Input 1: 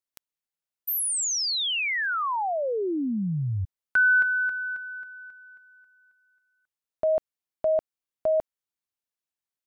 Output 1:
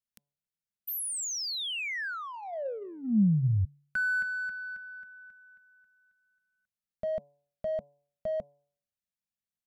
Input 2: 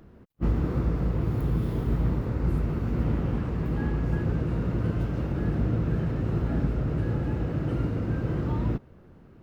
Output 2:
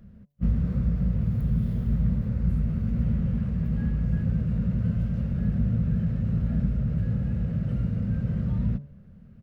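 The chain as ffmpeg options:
ffmpeg -i in.wav -filter_complex "[0:a]bandreject=frequency=143.4:width_type=h:width=4,bandreject=frequency=286.8:width_type=h:width=4,bandreject=frequency=430.2:width_type=h:width=4,bandreject=frequency=573.6:width_type=h:width=4,bandreject=frequency=717:width_type=h:width=4,bandreject=frequency=860.4:width_type=h:width=4,bandreject=frequency=1003.8:width_type=h:width=4,asplit=2[link_01][link_02];[link_02]asoftclip=type=tanh:threshold=-30dB,volume=-8dB[link_03];[link_01][link_03]amix=inputs=2:normalize=0,firequalizer=gain_entry='entry(140,0);entry(210,5);entry(300,-20);entry(550,-7);entry(850,-17);entry(1600,-9)':delay=0.05:min_phase=1" out.wav

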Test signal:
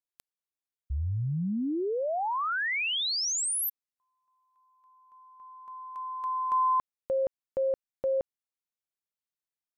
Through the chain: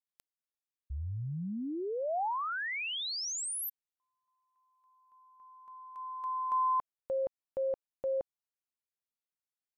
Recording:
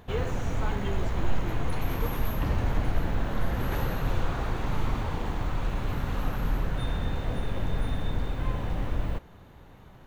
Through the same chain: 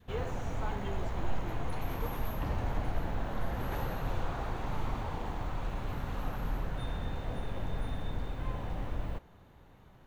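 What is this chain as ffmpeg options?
ffmpeg -i in.wav -af "adynamicequalizer=threshold=0.00794:dfrequency=770:dqfactor=1.4:tfrequency=770:tqfactor=1.4:attack=5:release=100:ratio=0.375:range=2.5:mode=boostabove:tftype=bell,volume=-7dB" out.wav

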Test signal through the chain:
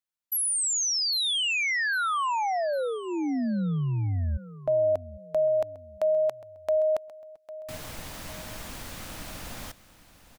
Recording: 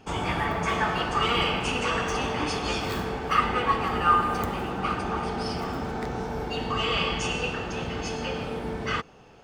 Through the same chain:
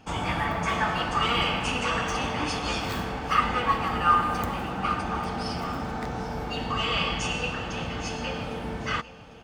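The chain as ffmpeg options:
ffmpeg -i in.wav -filter_complex "[0:a]equalizer=frequency=400:width=6.3:gain=-11.5,asplit=2[link_01][link_02];[link_02]aecho=0:1:802|1604|2406:0.15|0.0554|0.0205[link_03];[link_01][link_03]amix=inputs=2:normalize=0" out.wav

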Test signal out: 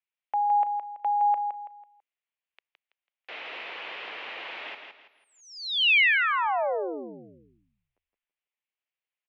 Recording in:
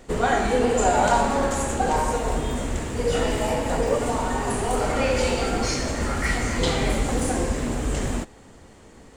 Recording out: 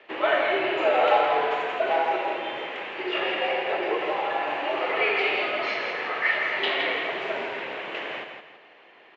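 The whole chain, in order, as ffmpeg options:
ffmpeg -i in.wav -af "highpass=frequency=580:width_type=q:width=0.5412,highpass=frequency=580:width_type=q:width=1.307,lowpass=frequency=3200:width_type=q:width=0.5176,lowpass=frequency=3200:width_type=q:width=0.7071,lowpass=frequency=3200:width_type=q:width=1.932,afreqshift=-110,aexciter=amount=3:drive=2.5:freq=2000,aecho=1:1:165|330|495|660:0.473|0.156|0.0515|0.017" out.wav

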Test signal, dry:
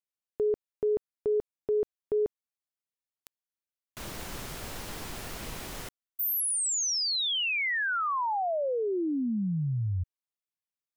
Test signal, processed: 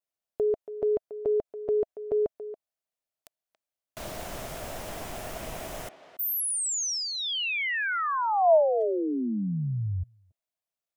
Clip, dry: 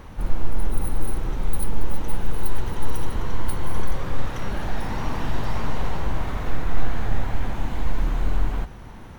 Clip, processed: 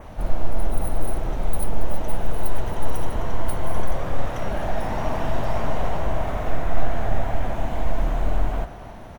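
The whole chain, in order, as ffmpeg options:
ffmpeg -i in.wav -filter_complex "[0:a]equalizer=frequency=650:width=3.3:gain=12.5,asplit=2[link_01][link_02];[link_02]adelay=280,highpass=300,lowpass=3400,asoftclip=type=hard:threshold=-14dB,volume=-12dB[link_03];[link_01][link_03]amix=inputs=2:normalize=0,adynamicequalizer=threshold=0.002:dfrequency=4300:dqfactor=2.9:tfrequency=4300:tqfactor=2.9:attack=5:release=100:ratio=0.375:range=2.5:mode=cutabove:tftype=bell" out.wav

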